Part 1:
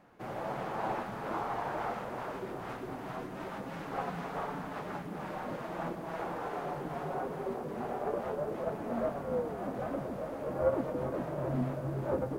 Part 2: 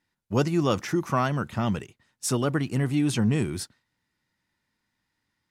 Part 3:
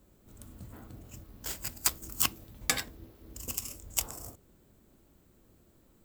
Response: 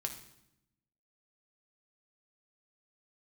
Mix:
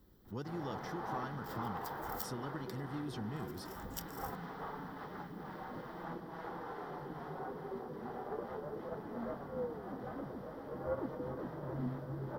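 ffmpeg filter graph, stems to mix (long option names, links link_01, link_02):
-filter_complex "[0:a]adelay=250,volume=-6dB[link_01];[1:a]acompressor=threshold=-31dB:ratio=2,volume=-12.5dB,asplit=2[link_02][link_03];[2:a]acompressor=threshold=-37dB:ratio=6,volume=-2dB[link_04];[link_03]apad=whole_len=266666[link_05];[link_04][link_05]sidechaincompress=threshold=-60dB:ratio=8:attack=5.5:release=102[link_06];[link_01][link_02][link_06]amix=inputs=3:normalize=0,superequalizer=8b=0.501:12b=0.355:15b=0.316:16b=0.447"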